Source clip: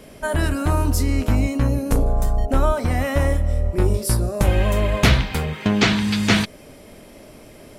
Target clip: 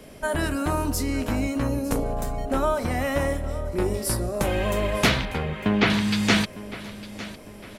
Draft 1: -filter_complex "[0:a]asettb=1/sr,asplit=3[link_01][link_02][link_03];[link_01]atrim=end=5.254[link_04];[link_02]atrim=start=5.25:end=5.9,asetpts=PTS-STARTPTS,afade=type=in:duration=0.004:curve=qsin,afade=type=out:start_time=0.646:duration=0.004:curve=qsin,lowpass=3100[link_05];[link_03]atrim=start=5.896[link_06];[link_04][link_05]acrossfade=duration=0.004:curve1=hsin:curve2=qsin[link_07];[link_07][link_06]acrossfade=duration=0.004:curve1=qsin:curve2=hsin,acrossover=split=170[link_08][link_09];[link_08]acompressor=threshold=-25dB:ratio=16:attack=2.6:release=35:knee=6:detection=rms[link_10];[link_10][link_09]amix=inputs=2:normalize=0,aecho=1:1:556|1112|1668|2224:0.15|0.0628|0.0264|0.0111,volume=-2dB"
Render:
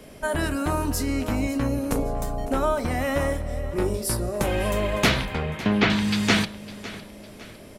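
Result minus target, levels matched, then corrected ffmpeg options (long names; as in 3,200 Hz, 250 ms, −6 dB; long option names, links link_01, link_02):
echo 349 ms early
-filter_complex "[0:a]asettb=1/sr,asplit=3[link_01][link_02][link_03];[link_01]atrim=end=5.254[link_04];[link_02]atrim=start=5.25:end=5.9,asetpts=PTS-STARTPTS,afade=type=in:duration=0.004:curve=qsin,afade=type=out:start_time=0.646:duration=0.004:curve=qsin,lowpass=3100[link_05];[link_03]atrim=start=5.896[link_06];[link_04][link_05]acrossfade=duration=0.004:curve1=hsin:curve2=qsin[link_07];[link_07][link_06]acrossfade=duration=0.004:curve1=qsin:curve2=hsin,acrossover=split=170[link_08][link_09];[link_08]acompressor=threshold=-25dB:ratio=16:attack=2.6:release=35:knee=6:detection=rms[link_10];[link_10][link_09]amix=inputs=2:normalize=0,aecho=1:1:905|1810|2715|3620:0.15|0.0628|0.0264|0.0111,volume=-2dB"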